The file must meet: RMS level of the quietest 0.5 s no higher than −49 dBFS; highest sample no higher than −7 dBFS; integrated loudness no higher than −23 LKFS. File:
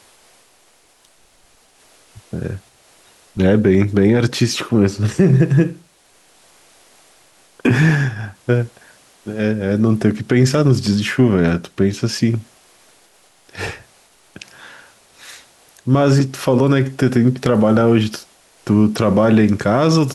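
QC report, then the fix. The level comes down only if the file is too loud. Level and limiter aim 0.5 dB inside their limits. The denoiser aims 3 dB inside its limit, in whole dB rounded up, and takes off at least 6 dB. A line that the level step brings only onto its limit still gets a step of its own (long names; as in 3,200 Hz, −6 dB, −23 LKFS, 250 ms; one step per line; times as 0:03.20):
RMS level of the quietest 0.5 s −54 dBFS: in spec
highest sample −4.0 dBFS: out of spec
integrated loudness −16.0 LKFS: out of spec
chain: level −7.5 dB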